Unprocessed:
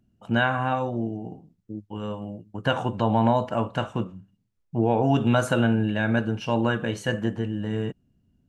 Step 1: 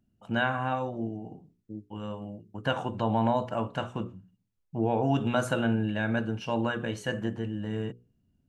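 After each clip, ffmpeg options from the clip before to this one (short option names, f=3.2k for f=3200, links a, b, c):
-af "bandreject=f=60:t=h:w=6,bandreject=f=120:t=h:w=6,bandreject=f=180:t=h:w=6,bandreject=f=240:t=h:w=6,bandreject=f=300:t=h:w=6,bandreject=f=360:t=h:w=6,bandreject=f=420:t=h:w=6,bandreject=f=480:t=h:w=6,volume=-4.5dB"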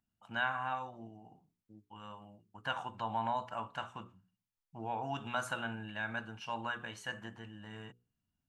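-af "lowshelf=f=660:t=q:w=1.5:g=-10,volume=-6dB"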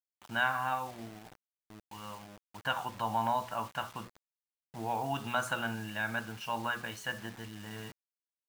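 -af "acrusher=bits=8:mix=0:aa=0.000001,volume=4dB"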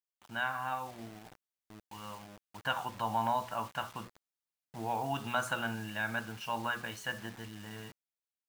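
-af "dynaudnorm=f=150:g=11:m=4.5dB,volume=-5dB"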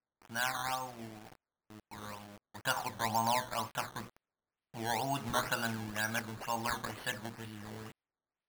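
-af "acrusher=samples=12:mix=1:aa=0.000001:lfo=1:lforange=12:lforate=2.1"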